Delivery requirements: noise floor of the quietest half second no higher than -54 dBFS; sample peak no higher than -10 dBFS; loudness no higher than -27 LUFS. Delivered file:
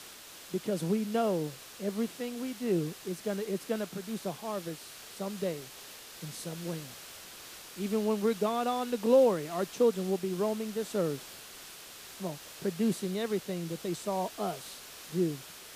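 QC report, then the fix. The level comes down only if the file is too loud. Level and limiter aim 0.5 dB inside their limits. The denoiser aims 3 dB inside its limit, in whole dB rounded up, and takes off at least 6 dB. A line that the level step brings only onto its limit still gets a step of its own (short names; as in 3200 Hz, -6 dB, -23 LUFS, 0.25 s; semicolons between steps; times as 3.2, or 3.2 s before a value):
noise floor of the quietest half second -49 dBFS: fail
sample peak -13.0 dBFS: OK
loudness -32.5 LUFS: OK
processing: denoiser 8 dB, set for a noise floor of -49 dBFS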